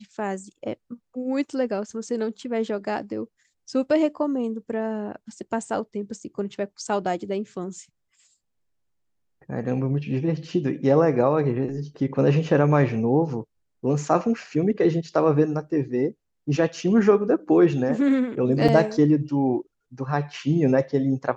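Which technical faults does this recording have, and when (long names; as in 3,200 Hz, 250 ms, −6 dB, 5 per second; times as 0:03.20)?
0:18.68: drop-out 5 ms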